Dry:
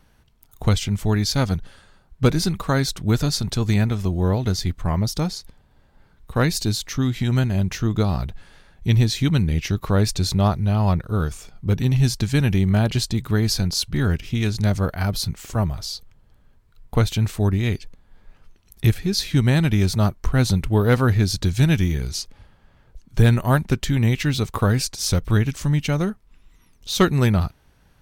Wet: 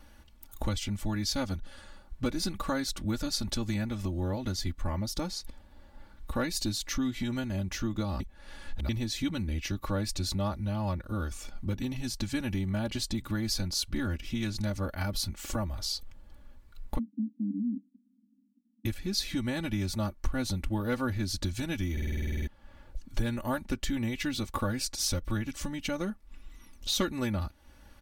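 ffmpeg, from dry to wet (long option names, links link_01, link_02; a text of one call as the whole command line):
ffmpeg -i in.wav -filter_complex "[0:a]asplit=3[link_01][link_02][link_03];[link_01]afade=type=out:start_time=16.97:duration=0.02[link_04];[link_02]asuperpass=centerf=240:order=12:qfactor=2.6,afade=type=in:start_time=16.97:duration=0.02,afade=type=out:start_time=18.85:duration=0.02[link_05];[link_03]afade=type=in:start_time=18.85:duration=0.02[link_06];[link_04][link_05][link_06]amix=inputs=3:normalize=0,asplit=14[link_07][link_08][link_09][link_10][link_11][link_12][link_13][link_14][link_15][link_16][link_17][link_18][link_19][link_20];[link_07]atrim=end=8.202[link_21];[link_08]atrim=start=8.198:end=8.892,asetpts=PTS-STARTPTS,areverse[link_22];[link_09]atrim=start=8.888:end=21.972[link_23];[link_10]atrim=start=21.918:end=21.972[link_24];[link_11]atrim=start=21.918:end=21.972[link_25];[link_12]atrim=start=21.918:end=21.972[link_26];[link_13]atrim=start=21.918:end=21.972[link_27];[link_14]atrim=start=21.918:end=21.972[link_28];[link_15]atrim=start=21.918:end=21.972[link_29];[link_16]atrim=start=21.918:end=21.972[link_30];[link_17]atrim=start=21.918:end=21.972[link_31];[link_18]atrim=start=21.918:end=21.972[link_32];[link_19]atrim=start=21.918:end=21.972[link_33];[link_20]atrim=start=22.468[link_34];[link_21][link_22]acrossfade=duration=0.004:curve1=hsin:curve2=hsin[link_35];[link_35][link_23]acrossfade=duration=0.004:curve1=hsin:curve2=hsin[link_36];[link_36][link_24]acrossfade=duration=0.004:curve1=hsin:curve2=hsin[link_37];[link_37][link_25]acrossfade=duration=0.004:curve1=hsin:curve2=hsin[link_38];[link_38][link_26]acrossfade=duration=0.004:curve1=hsin:curve2=hsin[link_39];[link_39][link_27]acrossfade=duration=0.004:curve1=hsin:curve2=hsin[link_40];[link_40][link_28]acrossfade=duration=0.004:curve1=hsin:curve2=hsin[link_41];[link_41][link_29]acrossfade=duration=0.004:curve1=hsin:curve2=hsin[link_42];[link_42][link_30]acrossfade=duration=0.004:curve1=hsin:curve2=hsin[link_43];[link_43][link_31]acrossfade=duration=0.004:curve1=hsin:curve2=hsin[link_44];[link_44][link_32]acrossfade=duration=0.004:curve1=hsin:curve2=hsin[link_45];[link_45][link_33]acrossfade=duration=0.004:curve1=hsin:curve2=hsin[link_46];[link_46][link_34]acrossfade=duration=0.004:curve1=hsin:curve2=hsin,acompressor=threshold=-34dB:ratio=2.5,aecho=1:1:3.5:0.84" out.wav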